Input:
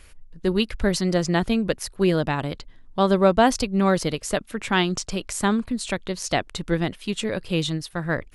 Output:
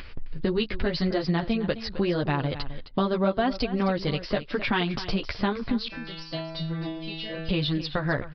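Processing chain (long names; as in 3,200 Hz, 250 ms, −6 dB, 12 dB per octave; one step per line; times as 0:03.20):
noise gate with hold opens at −37 dBFS
multi-voice chorus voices 2, 0.85 Hz, delay 11 ms, depth 4.2 ms
downward compressor 3 to 1, threshold −33 dBFS, peak gain reduction 14.5 dB
0:05.88–0:07.49: stiff-string resonator 160 Hz, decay 0.77 s, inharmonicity 0.002
upward compression, threshold −29 dBFS
on a send: single-tap delay 262 ms −13.5 dB
on the sum: downsampling to 11,025 Hz
level +7.5 dB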